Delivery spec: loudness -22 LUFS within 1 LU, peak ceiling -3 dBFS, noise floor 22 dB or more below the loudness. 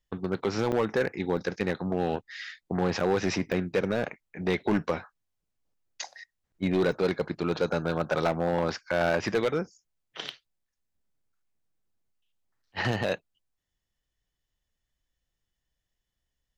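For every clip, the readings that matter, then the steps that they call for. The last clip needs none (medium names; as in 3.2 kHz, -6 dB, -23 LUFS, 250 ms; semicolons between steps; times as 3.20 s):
clipped samples 1.1%; clipping level -19.0 dBFS; dropouts 5; longest dropout 3.1 ms; loudness -29.0 LUFS; peak level -19.0 dBFS; loudness target -22.0 LUFS
-> clip repair -19 dBFS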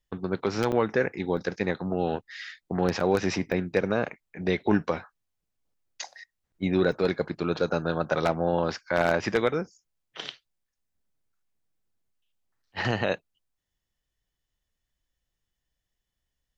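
clipped samples 0.0%; dropouts 5; longest dropout 3.1 ms
-> interpolate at 0.72/1.37/3.00/3.52/6.92 s, 3.1 ms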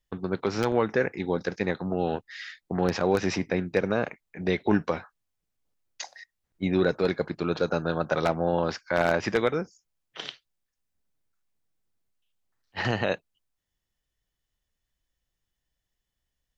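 dropouts 0; loudness -27.5 LUFS; peak level -10.0 dBFS; loudness target -22.0 LUFS
-> trim +5.5 dB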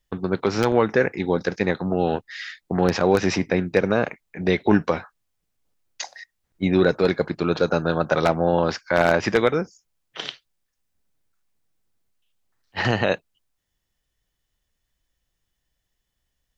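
loudness -22.0 LUFS; peak level -4.5 dBFS; noise floor -78 dBFS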